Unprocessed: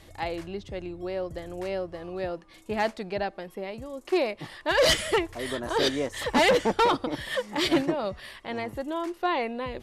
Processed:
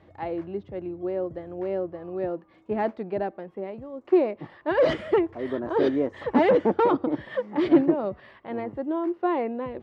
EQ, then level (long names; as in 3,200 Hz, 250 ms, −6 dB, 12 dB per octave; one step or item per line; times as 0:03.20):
dynamic equaliser 320 Hz, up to +7 dB, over −39 dBFS, Q 1.2
high-pass filter 98 Hz 12 dB per octave
Bessel low-pass filter 1,200 Hz, order 2
0.0 dB